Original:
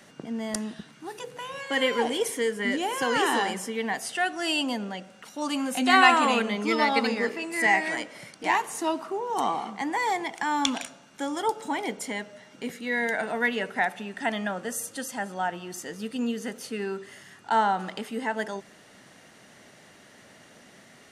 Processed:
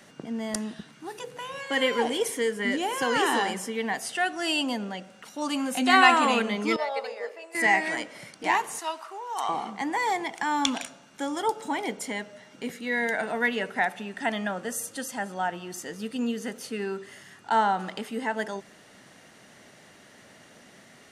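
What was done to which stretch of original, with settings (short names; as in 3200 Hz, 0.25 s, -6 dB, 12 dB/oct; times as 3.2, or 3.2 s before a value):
6.76–7.55 ladder high-pass 510 Hz, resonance 70%
8.79–9.49 HPF 880 Hz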